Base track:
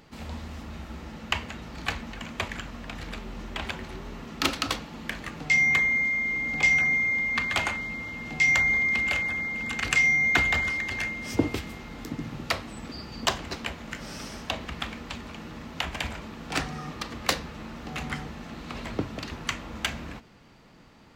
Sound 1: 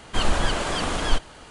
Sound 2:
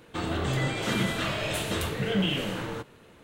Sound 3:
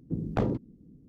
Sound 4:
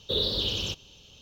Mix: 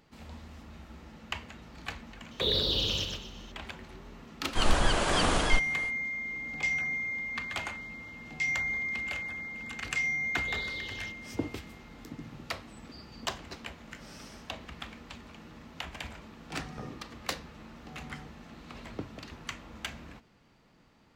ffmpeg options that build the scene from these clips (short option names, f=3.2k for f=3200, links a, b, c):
-filter_complex "[4:a]asplit=2[a][b];[0:a]volume=-9dB[c];[a]aecho=1:1:123|246|369|492:0.562|0.186|0.0612|0.0202[d];[1:a]dynaudnorm=f=110:g=3:m=11.5dB[e];[d]atrim=end=1.21,asetpts=PTS-STARTPTS,volume=-1.5dB,afade=t=in:d=0.004:c=hsin,afade=t=out:st=1.206:d=0.004:c=hsin,adelay=2310[f];[e]atrim=end=1.5,asetpts=PTS-STARTPTS,volume=-10dB,afade=t=in:d=0.004:c=hsin,afade=t=out:st=1.496:d=0.004:c=hsin,adelay=194481S[g];[b]atrim=end=1.21,asetpts=PTS-STARTPTS,volume=-15.5dB,afade=t=in:d=0.004:c=hsin,afade=t=out:st=1.206:d=0.004:c=hsin,adelay=10380[h];[3:a]atrim=end=1.08,asetpts=PTS-STARTPTS,volume=-16.5dB,afade=t=in:d=0.004:c=hsin,afade=t=out:st=1.076:d=0.004:c=hsin,adelay=16410[i];[c][f][g][h][i]amix=inputs=5:normalize=0"